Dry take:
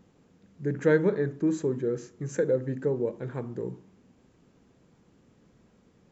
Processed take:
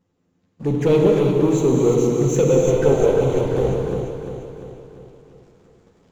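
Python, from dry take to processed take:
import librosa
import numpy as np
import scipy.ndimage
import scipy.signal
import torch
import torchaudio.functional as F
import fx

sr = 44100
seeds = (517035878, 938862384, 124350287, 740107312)

y = fx.lower_of_two(x, sr, delay_ms=2.0, at=(2.58, 3.71))
y = fx.rider(y, sr, range_db=3, speed_s=0.5)
y = fx.leveller(y, sr, passes=3)
y = fx.env_flanger(y, sr, rest_ms=11.6, full_db=-21.5)
y = fx.echo_feedback(y, sr, ms=347, feedback_pct=53, wet_db=-8)
y = fx.rev_gated(y, sr, seeds[0], gate_ms=380, shape='flat', drr_db=0.0)
y = y * librosa.db_to_amplitude(2.0)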